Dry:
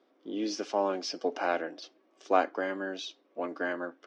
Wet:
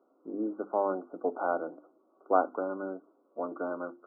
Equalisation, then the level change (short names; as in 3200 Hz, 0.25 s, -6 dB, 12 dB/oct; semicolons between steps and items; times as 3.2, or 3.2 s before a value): brick-wall FIR low-pass 1500 Hz; notches 50/100/150/200/250/300/350 Hz; 0.0 dB